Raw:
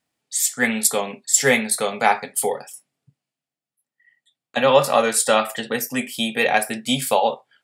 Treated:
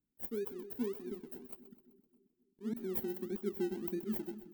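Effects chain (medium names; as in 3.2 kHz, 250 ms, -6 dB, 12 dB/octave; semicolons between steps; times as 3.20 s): gliding tape speed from 185% -> 152%; inverse Chebyshev band-stop 1.4–9 kHz, stop band 70 dB; amplifier tone stack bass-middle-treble 10-0-1; slow attack 113 ms; in parallel at -11.5 dB: decimation with a swept rate 30×, swing 60% 1.7 Hz; on the sum: two-band feedback delay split 380 Hz, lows 266 ms, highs 128 ms, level -13.5 dB; trim +16 dB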